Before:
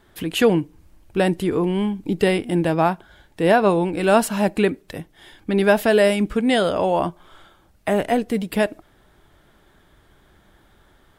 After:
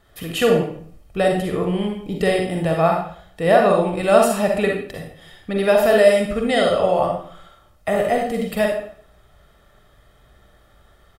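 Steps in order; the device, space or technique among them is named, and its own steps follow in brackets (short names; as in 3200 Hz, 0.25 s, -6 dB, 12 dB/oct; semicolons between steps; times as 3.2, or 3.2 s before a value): microphone above a desk (comb 1.6 ms, depth 54%; reverb RT60 0.55 s, pre-delay 39 ms, DRR 0.5 dB); gain -2.5 dB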